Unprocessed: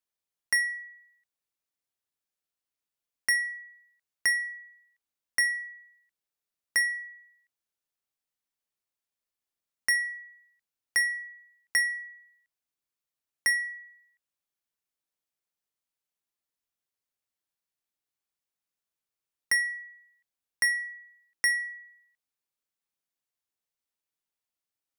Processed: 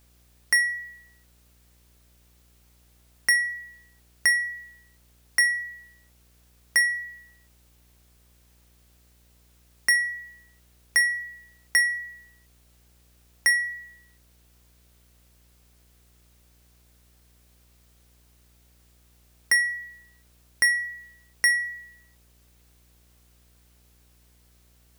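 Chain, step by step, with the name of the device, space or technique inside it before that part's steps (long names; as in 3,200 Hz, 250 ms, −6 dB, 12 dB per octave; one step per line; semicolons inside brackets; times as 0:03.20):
video cassette with head-switching buzz (hum with harmonics 60 Hz, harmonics 13, −65 dBFS −8 dB per octave; white noise bed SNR 33 dB)
level +4.5 dB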